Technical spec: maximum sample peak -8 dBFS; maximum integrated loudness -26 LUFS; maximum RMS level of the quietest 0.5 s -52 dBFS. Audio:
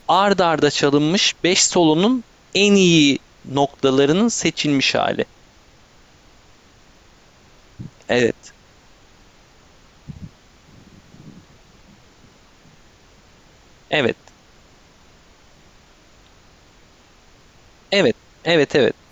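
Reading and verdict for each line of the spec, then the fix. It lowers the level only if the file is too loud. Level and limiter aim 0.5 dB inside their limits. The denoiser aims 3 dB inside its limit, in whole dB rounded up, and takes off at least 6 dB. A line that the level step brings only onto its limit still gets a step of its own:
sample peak -4.5 dBFS: fail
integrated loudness -17.0 LUFS: fail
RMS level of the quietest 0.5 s -51 dBFS: fail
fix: gain -9.5 dB

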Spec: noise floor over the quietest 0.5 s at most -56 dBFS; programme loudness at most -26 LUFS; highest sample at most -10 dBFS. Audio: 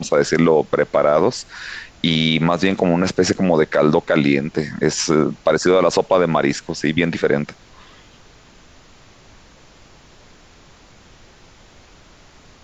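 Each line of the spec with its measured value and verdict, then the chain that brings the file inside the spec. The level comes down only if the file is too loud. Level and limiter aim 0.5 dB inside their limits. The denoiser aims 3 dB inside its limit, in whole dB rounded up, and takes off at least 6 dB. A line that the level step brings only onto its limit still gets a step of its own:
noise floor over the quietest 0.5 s -47 dBFS: fail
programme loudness -17.5 LUFS: fail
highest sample -4.0 dBFS: fail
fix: denoiser 6 dB, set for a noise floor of -47 dBFS; gain -9 dB

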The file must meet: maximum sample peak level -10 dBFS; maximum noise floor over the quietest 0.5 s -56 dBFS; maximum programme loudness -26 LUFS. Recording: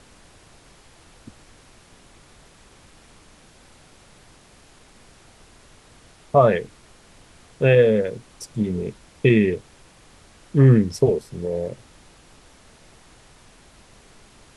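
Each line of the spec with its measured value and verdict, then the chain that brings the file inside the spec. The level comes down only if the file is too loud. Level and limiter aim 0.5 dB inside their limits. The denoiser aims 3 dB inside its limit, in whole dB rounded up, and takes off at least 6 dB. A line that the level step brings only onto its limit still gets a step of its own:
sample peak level -4.5 dBFS: fail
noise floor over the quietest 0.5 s -51 dBFS: fail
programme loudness -20.0 LUFS: fail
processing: gain -6.5 dB

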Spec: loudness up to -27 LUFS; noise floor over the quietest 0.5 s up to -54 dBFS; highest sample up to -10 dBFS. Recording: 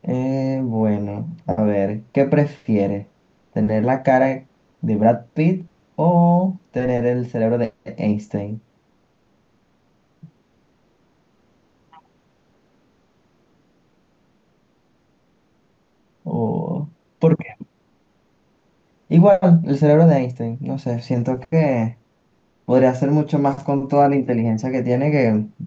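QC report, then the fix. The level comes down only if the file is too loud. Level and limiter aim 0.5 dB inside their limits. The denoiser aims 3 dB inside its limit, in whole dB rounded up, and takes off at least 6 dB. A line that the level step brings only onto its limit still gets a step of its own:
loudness -19.0 LUFS: fail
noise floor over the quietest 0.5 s -62 dBFS: OK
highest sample -3.5 dBFS: fail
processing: gain -8.5 dB

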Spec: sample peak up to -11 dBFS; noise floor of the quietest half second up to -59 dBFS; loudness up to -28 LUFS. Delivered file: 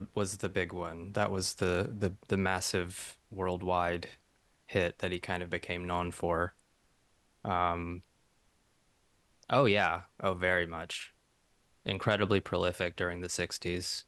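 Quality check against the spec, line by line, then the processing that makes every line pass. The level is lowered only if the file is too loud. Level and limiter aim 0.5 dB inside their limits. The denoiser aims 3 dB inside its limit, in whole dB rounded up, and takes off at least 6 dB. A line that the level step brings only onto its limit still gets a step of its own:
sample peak -12.5 dBFS: OK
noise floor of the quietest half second -71 dBFS: OK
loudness -33.0 LUFS: OK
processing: none

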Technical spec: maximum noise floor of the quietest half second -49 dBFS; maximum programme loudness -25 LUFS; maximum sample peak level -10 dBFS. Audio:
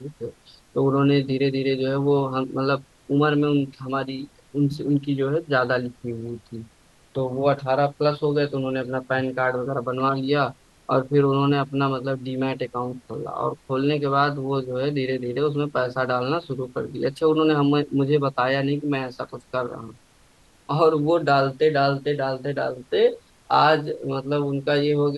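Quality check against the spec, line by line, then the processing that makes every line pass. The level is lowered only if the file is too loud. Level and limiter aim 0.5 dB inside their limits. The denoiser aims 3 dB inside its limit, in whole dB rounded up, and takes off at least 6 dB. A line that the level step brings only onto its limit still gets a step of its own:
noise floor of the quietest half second -56 dBFS: OK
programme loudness -23.0 LUFS: fail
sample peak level -5.5 dBFS: fail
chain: gain -2.5 dB; limiter -10.5 dBFS

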